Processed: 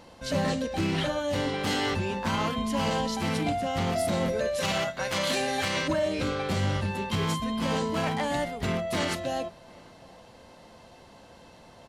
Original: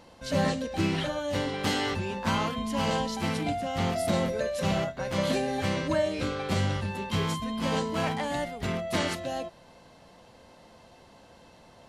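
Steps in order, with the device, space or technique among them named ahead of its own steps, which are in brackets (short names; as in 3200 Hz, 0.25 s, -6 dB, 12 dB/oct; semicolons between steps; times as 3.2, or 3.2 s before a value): limiter into clipper (limiter -20 dBFS, peak gain reduction 5 dB; hard clip -23 dBFS, distortion -24 dB); 4.6–5.88 tilt shelf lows -6.5 dB, about 740 Hz; outdoor echo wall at 130 m, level -25 dB; gain +2.5 dB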